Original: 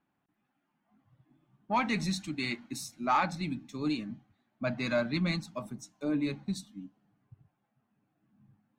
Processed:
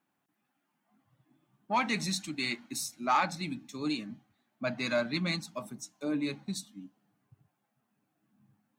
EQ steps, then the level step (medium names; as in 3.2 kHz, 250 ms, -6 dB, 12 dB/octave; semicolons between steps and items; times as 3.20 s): high-pass 190 Hz 6 dB/octave; treble shelf 4.6 kHz +7.5 dB; 0.0 dB